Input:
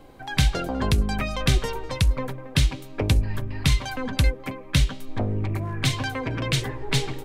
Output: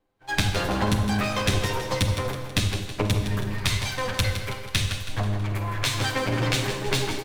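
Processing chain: comb filter that takes the minimum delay 9.8 ms; expander -29 dBFS; 3.54–5.94 s: peaking EQ 280 Hz -9.5 dB 2.1 oct; compression 3:1, threshold -32 dBFS, peak gain reduction 12.5 dB; feedback delay 162 ms, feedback 50%, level -9.5 dB; Schroeder reverb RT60 1.1 s, combs from 31 ms, DRR 6.5 dB; trim +8.5 dB

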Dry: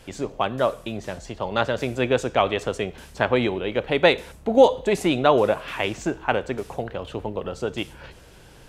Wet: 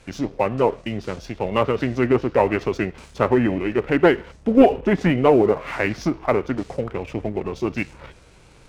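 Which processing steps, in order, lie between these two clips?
formant shift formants -4 st; low-pass that closes with the level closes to 1.8 kHz, closed at -17 dBFS; waveshaping leveller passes 1

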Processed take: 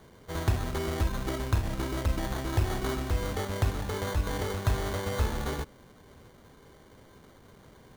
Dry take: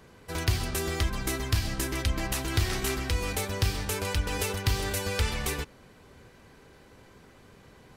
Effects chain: low-pass 3 kHz 6 dB/octave; sample-and-hold 17×

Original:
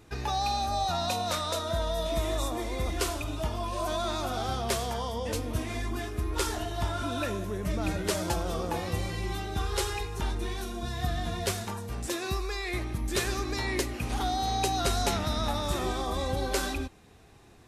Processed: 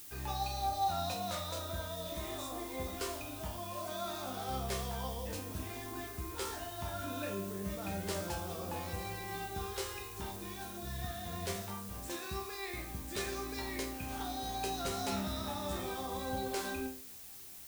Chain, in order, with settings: hum notches 50/100 Hz; chord resonator C2 sus4, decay 0.42 s; added noise blue -54 dBFS; trim +3.5 dB

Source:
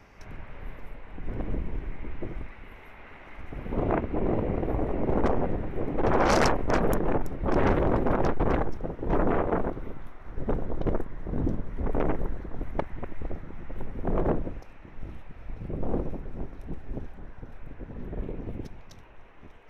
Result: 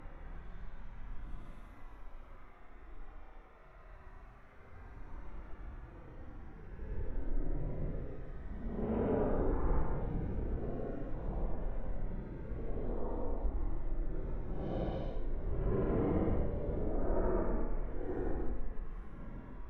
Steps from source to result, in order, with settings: Paulstretch 18×, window 0.05 s, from 9.99 s; low-pass that closes with the level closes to 2.3 kHz, closed at -20 dBFS; trim -8 dB

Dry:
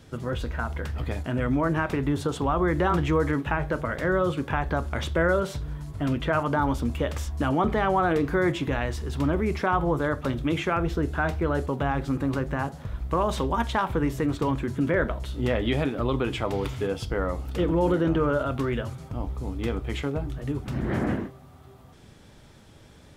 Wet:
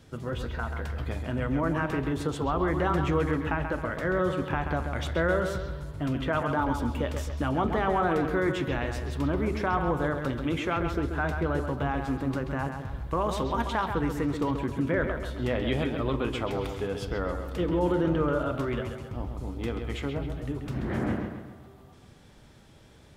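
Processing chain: bucket-brigade echo 134 ms, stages 4096, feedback 47%, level -7 dB; trim -3.5 dB

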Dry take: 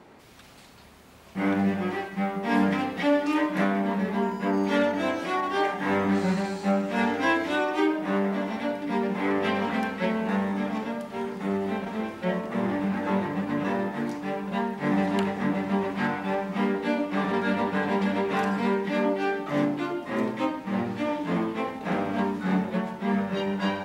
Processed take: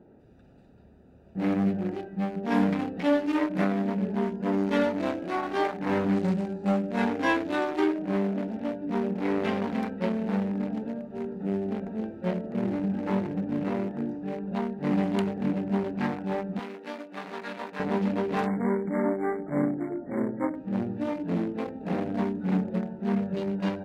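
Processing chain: local Wiener filter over 41 samples; 16.59–17.80 s: high-pass 1.3 kHz 6 dB/octave; 18.47–20.56 s: spectral selection erased 2.3–7.2 kHz

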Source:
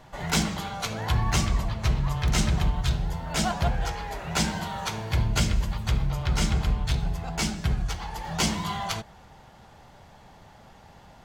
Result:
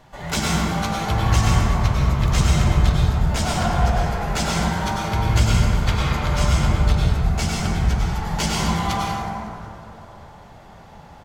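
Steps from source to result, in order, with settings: 5.77–6.26 s: overdrive pedal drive 14 dB, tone 5.2 kHz, clips at -14.5 dBFS; on a send: frequency-shifting echo 184 ms, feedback 63%, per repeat -57 Hz, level -19 dB; on the sum: plate-style reverb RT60 2.9 s, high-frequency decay 0.3×, pre-delay 85 ms, DRR -5 dB

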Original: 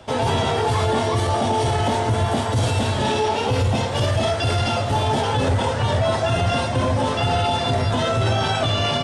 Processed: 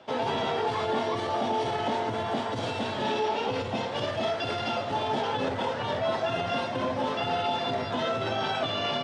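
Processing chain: three-band isolator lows -22 dB, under 160 Hz, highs -21 dB, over 5.4 kHz; trim -6.5 dB

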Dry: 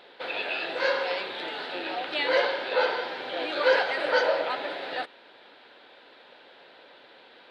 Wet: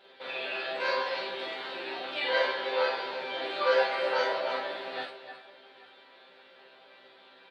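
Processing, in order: chord resonator C3 fifth, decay 0.24 s; on a send: multi-tap echo 43/49/299/312/403/835 ms -3/-4.5/-17/-10.5/-18/-18.5 dB; on the sum: trim +6 dB

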